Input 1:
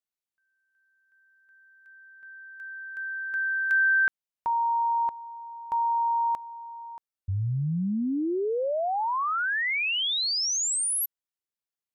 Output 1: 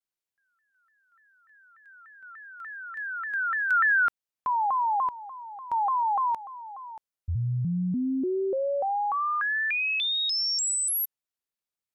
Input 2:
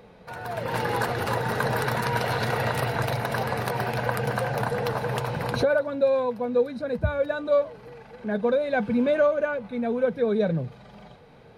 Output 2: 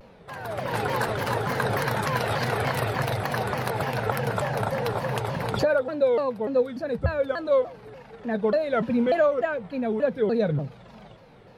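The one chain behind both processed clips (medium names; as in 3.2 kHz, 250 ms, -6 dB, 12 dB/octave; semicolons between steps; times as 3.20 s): vibrato with a chosen wave saw down 3.4 Hz, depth 250 cents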